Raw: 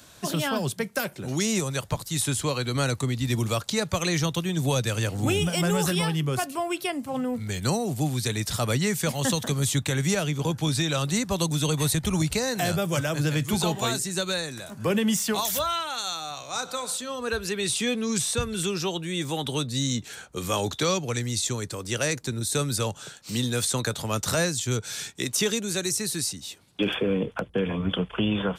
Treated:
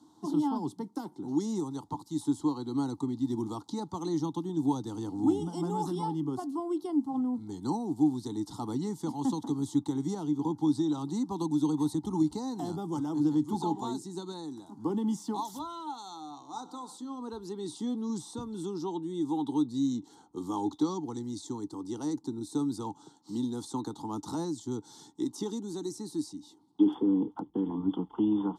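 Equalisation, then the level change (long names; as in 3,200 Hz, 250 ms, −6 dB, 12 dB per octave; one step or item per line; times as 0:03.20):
formant filter u
Butterworth band-reject 2,400 Hz, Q 0.94
parametric band 10,000 Hz +5.5 dB 1.7 octaves
+8.0 dB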